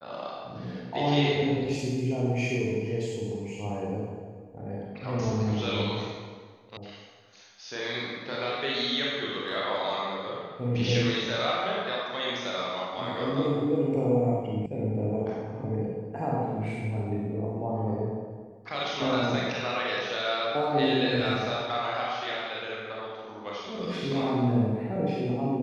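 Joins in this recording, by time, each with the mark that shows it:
0:06.77: cut off before it has died away
0:14.66: cut off before it has died away

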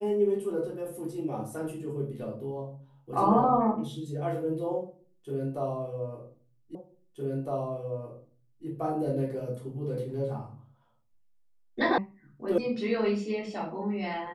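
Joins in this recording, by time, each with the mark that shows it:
0:06.75: the same again, the last 1.91 s
0:11.98: cut off before it has died away
0:12.58: cut off before it has died away

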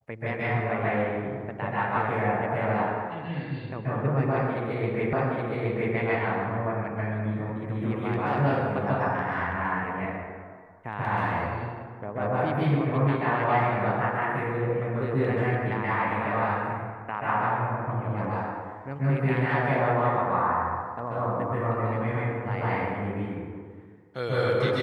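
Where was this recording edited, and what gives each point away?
0:05.13: the same again, the last 0.82 s

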